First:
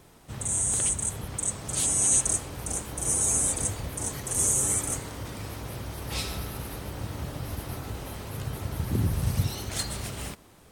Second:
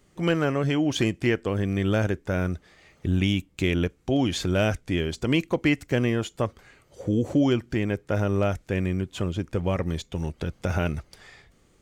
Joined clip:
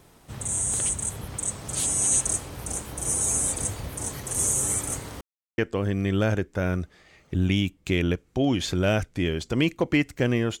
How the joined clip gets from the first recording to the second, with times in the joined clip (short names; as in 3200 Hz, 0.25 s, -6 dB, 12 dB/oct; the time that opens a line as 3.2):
first
5.21–5.58 mute
5.58 switch to second from 1.3 s